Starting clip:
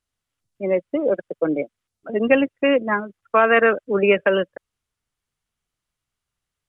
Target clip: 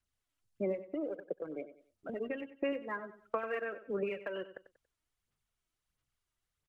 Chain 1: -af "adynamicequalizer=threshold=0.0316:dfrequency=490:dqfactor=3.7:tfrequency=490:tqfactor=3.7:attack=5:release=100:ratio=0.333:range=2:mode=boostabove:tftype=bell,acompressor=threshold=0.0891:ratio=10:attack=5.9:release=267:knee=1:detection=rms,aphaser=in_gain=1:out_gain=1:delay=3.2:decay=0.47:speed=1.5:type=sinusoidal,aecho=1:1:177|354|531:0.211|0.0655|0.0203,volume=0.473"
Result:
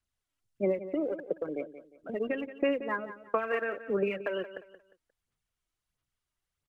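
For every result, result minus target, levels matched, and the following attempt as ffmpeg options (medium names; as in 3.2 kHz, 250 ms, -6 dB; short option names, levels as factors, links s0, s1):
echo 83 ms late; compression: peak gain reduction -6.5 dB
-af "adynamicequalizer=threshold=0.0316:dfrequency=490:dqfactor=3.7:tfrequency=490:tqfactor=3.7:attack=5:release=100:ratio=0.333:range=2:mode=boostabove:tftype=bell,acompressor=threshold=0.0891:ratio=10:attack=5.9:release=267:knee=1:detection=rms,aphaser=in_gain=1:out_gain=1:delay=3.2:decay=0.47:speed=1.5:type=sinusoidal,aecho=1:1:94|188|282:0.211|0.0655|0.0203,volume=0.473"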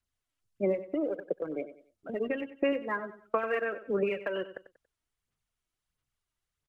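compression: peak gain reduction -6.5 dB
-af "adynamicequalizer=threshold=0.0316:dfrequency=490:dqfactor=3.7:tfrequency=490:tqfactor=3.7:attack=5:release=100:ratio=0.333:range=2:mode=boostabove:tftype=bell,acompressor=threshold=0.0398:ratio=10:attack=5.9:release=267:knee=1:detection=rms,aphaser=in_gain=1:out_gain=1:delay=3.2:decay=0.47:speed=1.5:type=sinusoidal,aecho=1:1:94|188|282:0.211|0.0655|0.0203,volume=0.473"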